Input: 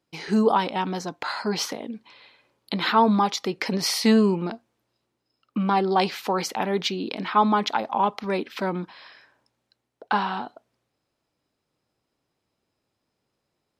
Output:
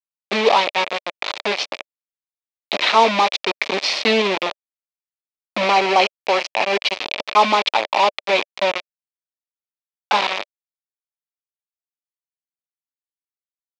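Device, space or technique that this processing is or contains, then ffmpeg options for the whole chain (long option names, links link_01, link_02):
hand-held game console: -filter_complex "[0:a]acrusher=bits=3:mix=0:aa=0.000001,highpass=420,equalizer=frequency=590:width_type=q:width=4:gain=7,equalizer=frequency=1500:width_type=q:width=4:gain=-6,equalizer=frequency=2400:width_type=q:width=4:gain=8,equalizer=frequency=3600:width_type=q:width=4:gain=4,lowpass=frequency=4900:width=0.5412,lowpass=frequency=4900:width=1.3066,asettb=1/sr,asplit=3[link_01][link_02][link_03];[link_01]atrim=end=5.704[link_04];[link_02]atrim=start=5.7:end=6.97,asetpts=PTS-STARTPTS,afade=type=in:duration=0.004:curve=qsin,afade=type=out:start_time=1.266:duration=0.004:curve=qsin,bandreject=frequency=3600:width=9.1[link_05];[link_03]atrim=start=6.966[link_06];[link_04][link_05]acrossfade=duration=0.004:curve1=hsin:curve2=qsin[link_07];[link_07][link_06]acrossfade=duration=0.004:curve1=qsin:curve2=hsin,volume=5dB"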